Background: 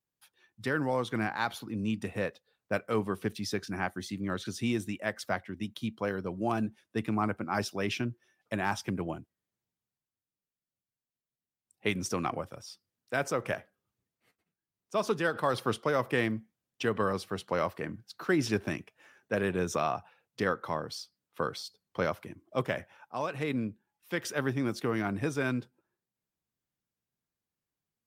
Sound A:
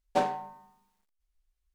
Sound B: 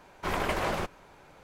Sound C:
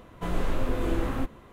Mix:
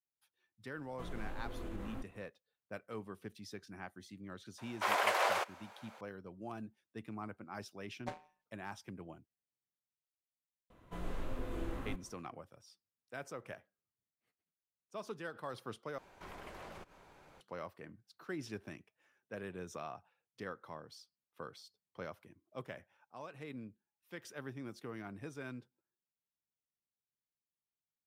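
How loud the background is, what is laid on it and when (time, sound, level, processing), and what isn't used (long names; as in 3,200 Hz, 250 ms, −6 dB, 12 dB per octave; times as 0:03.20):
background −15 dB
0:00.77: mix in C −16 dB + brickwall limiter −17.5 dBFS
0:04.58: mix in B + high-pass filter 530 Hz 24 dB per octave
0:07.91: mix in A −11.5 dB + power curve on the samples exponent 2
0:10.70: mix in C −13 dB
0:15.98: overwrite with B −6.5 dB + downward compressor 2.5 to 1, threshold −47 dBFS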